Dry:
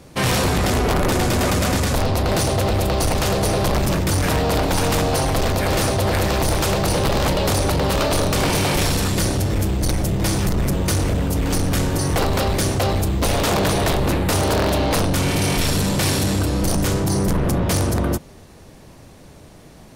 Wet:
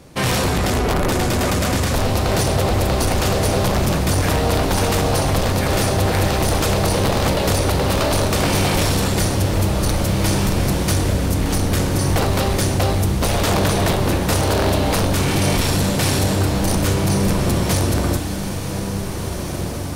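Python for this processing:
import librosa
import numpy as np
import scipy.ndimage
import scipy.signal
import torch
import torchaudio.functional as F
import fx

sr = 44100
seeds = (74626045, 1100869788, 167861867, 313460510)

y = fx.echo_diffused(x, sr, ms=1836, feedback_pct=42, wet_db=-6.5)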